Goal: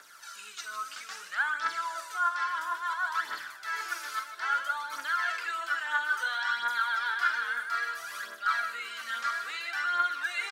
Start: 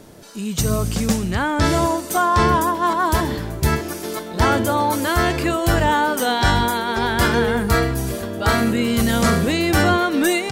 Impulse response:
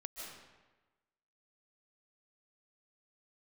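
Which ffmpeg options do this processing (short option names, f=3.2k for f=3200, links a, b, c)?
-filter_complex "[0:a]acrossover=split=5200[a][b];[b]acompressor=threshold=-40dB:ratio=4:attack=1:release=60[c];[a][c]amix=inputs=2:normalize=0,equalizer=f=5.6k:w=0.66:g=4.5,areverse,acompressor=threshold=-25dB:ratio=6,areverse,aecho=1:1:46.65|151.6:0.282|0.282,aeval=exprs='val(0)+0.0126*(sin(2*PI*50*n/s)+sin(2*PI*2*50*n/s)/2+sin(2*PI*3*50*n/s)/3+sin(2*PI*4*50*n/s)/4+sin(2*PI*5*50*n/s)/5)':c=same,highpass=f=1.4k:t=q:w=4.9,aphaser=in_gain=1:out_gain=1:delay=4:decay=0.54:speed=0.6:type=triangular,volume=-9dB"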